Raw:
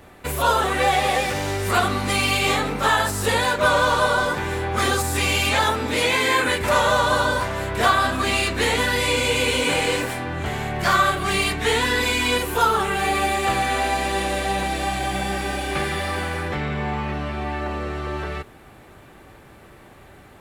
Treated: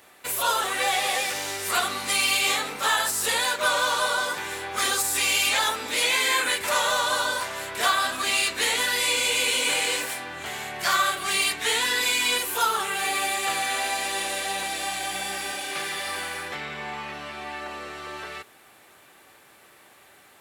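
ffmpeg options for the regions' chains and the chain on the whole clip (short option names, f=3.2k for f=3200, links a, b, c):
-filter_complex "[0:a]asettb=1/sr,asplit=3[a][b][c];[a]atrim=end=15.524[d];[b]atrim=start=15.52:end=16.06,asetpts=PTS-STARTPTS,afade=t=in:d=0.004:c=qsin,afade=t=out:st=0.536:d=0.004:c=qsin,highpass=89,highshelf=f=11k:g=-3,aeval=exprs='clip(val(0),-1,0.0708)':c=same[e];[c]atrim=start=16.056[f];[d][e]acrossfade=d=0.004:c1=hsin:c2=qsin[g];[g][f]acrossfade=d=0.004:c1=qsin:c2=hsin,highpass=f=690:p=1,highshelf=f=3k:g=9.5,volume=-5dB"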